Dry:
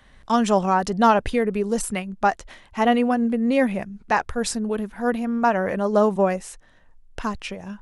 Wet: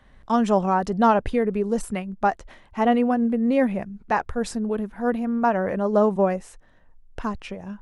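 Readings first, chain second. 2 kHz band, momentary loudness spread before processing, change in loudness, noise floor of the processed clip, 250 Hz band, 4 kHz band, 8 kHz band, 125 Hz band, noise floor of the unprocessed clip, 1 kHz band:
−4.0 dB, 12 LU, −1.0 dB, −54 dBFS, 0.0 dB, −7.0 dB, −9.0 dB, 0.0 dB, −53 dBFS, −1.5 dB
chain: high-shelf EQ 2,000 Hz −9.5 dB

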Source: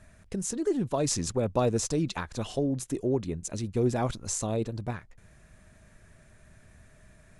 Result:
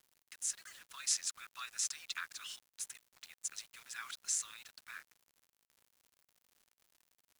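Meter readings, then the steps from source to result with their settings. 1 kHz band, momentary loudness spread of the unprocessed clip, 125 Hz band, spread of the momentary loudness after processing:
−17.0 dB, 8 LU, below −40 dB, 17 LU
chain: Butterworth high-pass 1,300 Hz 48 dB per octave
surface crackle 210 per second −54 dBFS
bit reduction 9 bits
level −2.5 dB

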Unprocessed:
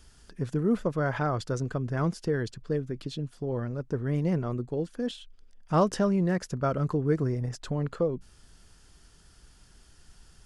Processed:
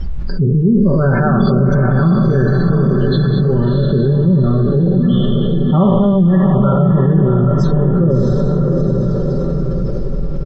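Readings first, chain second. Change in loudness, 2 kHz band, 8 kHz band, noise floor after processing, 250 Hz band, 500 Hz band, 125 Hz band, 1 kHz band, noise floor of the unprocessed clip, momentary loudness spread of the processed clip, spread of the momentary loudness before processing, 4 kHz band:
+16.0 dB, +12.0 dB, can't be measured, −17 dBFS, +18.0 dB, +13.5 dB, +19.0 dB, +11.0 dB, −58 dBFS, 6 LU, 9 LU, +11.5 dB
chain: peak hold with a decay on every bin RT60 1.79 s
de-essing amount 100%
gate on every frequency bin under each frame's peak −20 dB strong
bass and treble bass +12 dB, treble +13 dB
comb filter 5.2 ms, depth 85%
hum removal 49.51 Hz, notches 28
background noise brown −53 dBFS
high-frequency loss of the air 110 metres
on a send: feedback delay with all-pass diffusion 683 ms, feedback 41%, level −5 dB
on the sum: envelope flattener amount 70%
level −1 dB

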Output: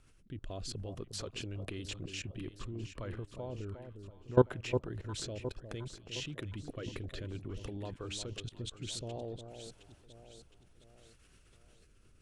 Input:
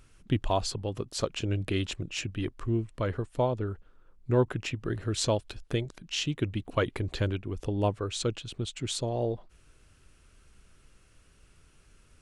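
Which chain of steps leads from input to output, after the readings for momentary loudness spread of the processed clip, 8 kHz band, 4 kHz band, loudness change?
14 LU, −8.0 dB, −8.0 dB, −8.0 dB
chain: rotating-speaker cabinet horn 0.6 Hz
output level in coarse steps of 22 dB
delay that swaps between a low-pass and a high-pass 357 ms, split 1,000 Hz, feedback 66%, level −8 dB
level +3 dB

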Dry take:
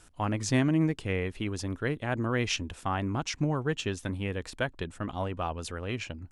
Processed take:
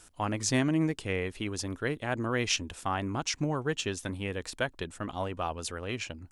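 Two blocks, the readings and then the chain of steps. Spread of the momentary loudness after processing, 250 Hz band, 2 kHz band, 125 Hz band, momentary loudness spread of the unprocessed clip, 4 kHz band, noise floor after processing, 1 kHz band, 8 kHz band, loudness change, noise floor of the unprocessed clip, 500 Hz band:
8 LU, −2.0 dB, +0.5 dB, −3.5 dB, 9 LU, +2.0 dB, −56 dBFS, 0.0 dB, +4.5 dB, −1.0 dB, −55 dBFS, −0.5 dB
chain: bass and treble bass −4 dB, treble +5 dB

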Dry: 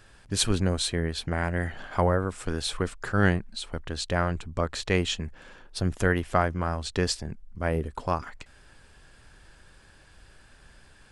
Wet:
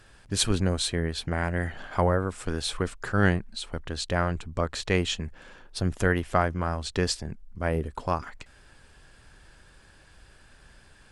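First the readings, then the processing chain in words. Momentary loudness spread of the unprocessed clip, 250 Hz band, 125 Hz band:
9 LU, 0.0 dB, 0.0 dB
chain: Opus 96 kbit/s 48,000 Hz

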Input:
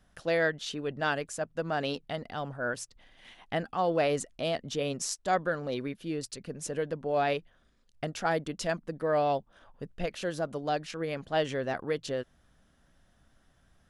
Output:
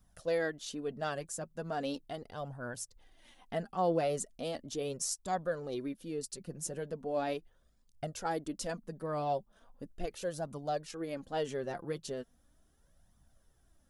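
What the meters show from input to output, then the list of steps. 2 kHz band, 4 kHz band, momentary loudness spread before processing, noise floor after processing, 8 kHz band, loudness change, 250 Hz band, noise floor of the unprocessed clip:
−10.5 dB, −7.5 dB, 9 LU, −69 dBFS, −0.5 dB, −5.5 dB, −4.0 dB, −67 dBFS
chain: high-shelf EQ 7,000 Hz +9.5 dB
flanger 0.38 Hz, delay 0.8 ms, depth 5.2 ms, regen +26%
parametric band 2,300 Hz −8 dB 2.2 octaves

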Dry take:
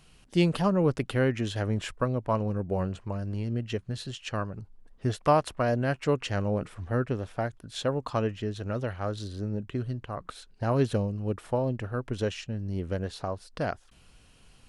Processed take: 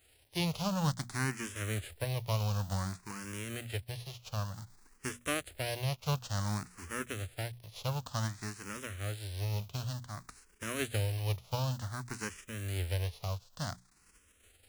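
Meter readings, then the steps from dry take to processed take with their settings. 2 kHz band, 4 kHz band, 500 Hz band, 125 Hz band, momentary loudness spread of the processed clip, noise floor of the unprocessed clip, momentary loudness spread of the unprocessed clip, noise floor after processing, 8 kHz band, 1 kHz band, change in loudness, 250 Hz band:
−2.5 dB, −1.0 dB, −13.0 dB, −4.5 dB, 9 LU, −58 dBFS, 10 LU, −66 dBFS, +5.0 dB, −9.0 dB, −7.0 dB, −10.5 dB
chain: spectral envelope flattened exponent 0.3
parametric band 86 Hz +14.5 dB 1.2 octaves
mains-hum notches 60/120/180/240 Hz
frequency shifter mixed with the dry sound +0.55 Hz
level −8 dB

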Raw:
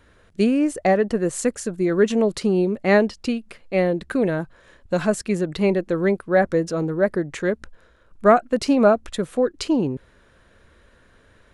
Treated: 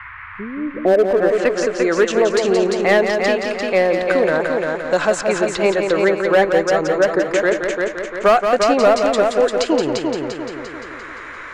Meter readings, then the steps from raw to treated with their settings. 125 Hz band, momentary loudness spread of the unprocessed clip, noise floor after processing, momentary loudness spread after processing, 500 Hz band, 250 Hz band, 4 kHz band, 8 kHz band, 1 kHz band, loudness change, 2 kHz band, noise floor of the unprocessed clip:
−4.5 dB, 10 LU, −34 dBFS, 13 LU, +6.0 dB, −1.0 dB, +8.5 dB, +4.0 dB, +6.0 dB, +4.5 dB, +8.0 dB, −56 dBFS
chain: parametric band 190 Hz −10.5 dB 1.3 octaves
low-pass filter sweep 100 Hz → 7,100 Hz, 0:00.51–0:01.69
pitch vibrato 5.5 Hz 33 cents
mid-hump overdrive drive 10 dB, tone 1,800 Hz, clips at −2 dBFS
in parallel at −7 dB: wave folding −14.5 dBFS
on the sum: noise in a band 1,000–2,200 Hz −48 dBFS
on a send: echo machine with several playback heads 173 ms, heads first and second, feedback 45%, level −7 dB
on the sum: multiband upward and downward compressor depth 40%
level +2 dB

